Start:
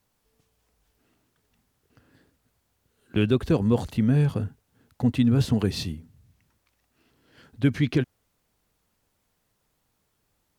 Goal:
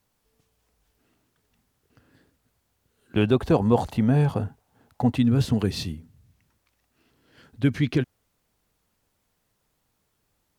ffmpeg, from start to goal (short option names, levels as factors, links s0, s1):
-filter_complex "[0:a]asettb=1/sr,asplit=3[s0][s1][s2];[s0]atrim=end=3.174[s3];[s1]atrim=start=3.17:end=5.17,asetpts=PTS-STARTPTS,afade=t=in:d=0.004:c=qsin,afade=t=out:st=1.996:d=0.004:c=qsin,equalizer=f=790:w=1.4:g=11[s4];[s2]atrim=start=5.166[s5];[s3][s4]acrossfade=d=0.004:c1=hsin:c2=qsin[s6];[s6][s5]acrossfade=d=0.004:c1=qsin:c2=hsin"